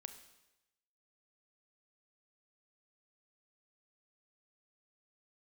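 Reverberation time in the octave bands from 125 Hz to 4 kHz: 1.0 s, 0.90 s, 0.95 s, 0.95 s, 0.95 s, 0.95 s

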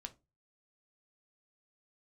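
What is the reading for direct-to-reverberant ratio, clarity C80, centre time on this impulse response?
6.0 dB, 27.0 dB, 4 ms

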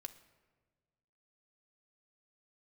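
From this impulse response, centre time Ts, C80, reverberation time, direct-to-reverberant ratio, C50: 7 ms, 16.0 dB, 1.4 s, 6.5 dB, 14.0 dB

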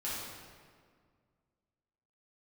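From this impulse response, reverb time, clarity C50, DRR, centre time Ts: 1.9 s, -2.0 dB, -9.5 dB, 109 ms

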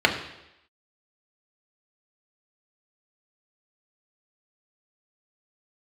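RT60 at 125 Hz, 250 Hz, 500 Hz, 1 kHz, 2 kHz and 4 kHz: 0.75 s, 0.85 s, 0.90 s, 0.85 s, 0.90 s, 0.90 s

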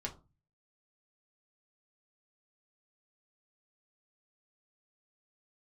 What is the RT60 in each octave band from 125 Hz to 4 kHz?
0.65 s, 0.45 s, 0.30 s, 0.30 s, 0.20 s, 0.20 s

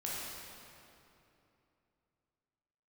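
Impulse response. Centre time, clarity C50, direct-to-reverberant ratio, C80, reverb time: 162 ms, -3.5 dB, -6.5 dB, -1.0 dB, 2.9 s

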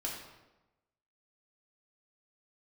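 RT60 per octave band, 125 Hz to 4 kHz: 1.1 s, 1.1 s, 1.1 s, 1.0 s, 0.85 s, 0.75 s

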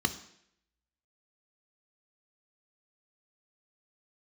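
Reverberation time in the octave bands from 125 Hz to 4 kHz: 0.65 s, 0.70 s, 0.75 s, 0.70 s, 0.75 s, 0.70 s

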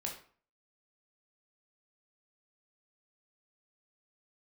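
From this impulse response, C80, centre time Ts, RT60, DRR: 11.5 dB, 24 ms, 0.45 s, -0.5 dB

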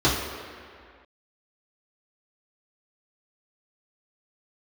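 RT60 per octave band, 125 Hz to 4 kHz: 1.6 s, 2.0 s, 2.0 s, 2.2 s, 2.3 s, 1.6 s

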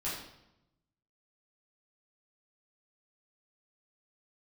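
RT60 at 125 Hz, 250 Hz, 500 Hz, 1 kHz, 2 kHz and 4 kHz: 1.3 s, 1.1 s, 0.90 s, 0.85 s, 0.75 s, 0.70 s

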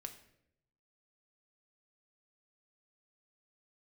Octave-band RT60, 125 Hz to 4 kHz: 1.2 s, 0.95 s, 0.90 s, 0.60 s, 0.70 s, 0.55 s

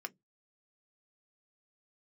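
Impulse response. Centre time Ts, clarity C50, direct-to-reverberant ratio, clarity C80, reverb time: 2 ms, 31.0 dB, 7.5 dB, 41.5 dB, 0.15 s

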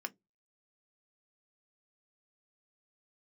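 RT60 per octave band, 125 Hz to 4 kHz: 0.35 s, 0.25 s, 0.20 s, 0.10 s, 0.10 s, 0.10 s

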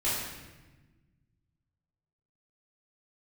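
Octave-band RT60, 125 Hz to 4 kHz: 2.4 s, 2.0 s, 1.3 s, 1.1 s, 1.2 s, 0.95 s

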